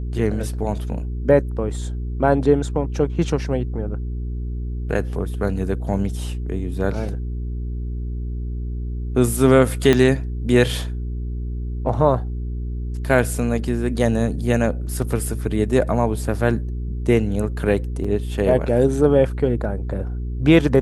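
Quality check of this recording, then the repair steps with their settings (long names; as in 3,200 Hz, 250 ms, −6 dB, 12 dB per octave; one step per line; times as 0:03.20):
mains hum 60 Hz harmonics 7 −26 dBFS
0:09.93: click −4 dBFS
0:18.04–0:18.05: drop-out 5.1 ms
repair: click removal
hum removal 60 Hz, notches 7
repair the gap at 0:18.04, 5.1 ms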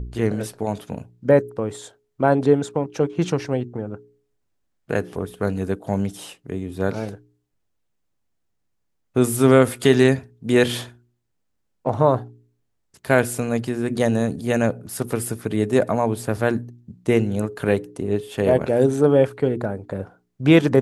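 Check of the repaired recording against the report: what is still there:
0:09.93: click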